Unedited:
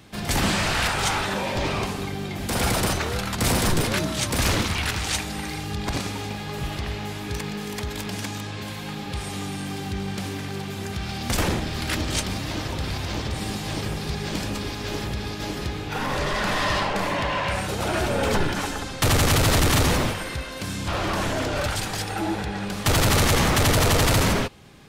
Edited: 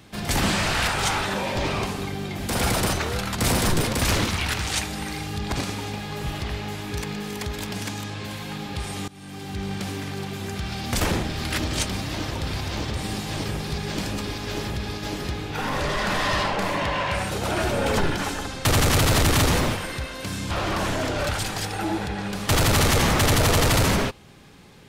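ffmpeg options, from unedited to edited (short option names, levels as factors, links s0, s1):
-filter_complex "[0:a]asplit=3[s0][s1][s2];[s0]atrim=end=3.932[s3];[s1]atrim=start=4.298:end=9.45,asetpts=PTS-STARTPTS,afade=t=out:st=5.148:d=0.004:c=hsin:silence=0.0891251[s4];[s2]atrim=start=9.45,asetpts=PTS-STARTPTS,afade=t=in:d=0.6:silence=0.0891251[s5];[s4][s5]concat=n=2:v=0:a=1[s6];[s3][s6]acrossfade=d=0.004:c1=hsin:c2=hsin"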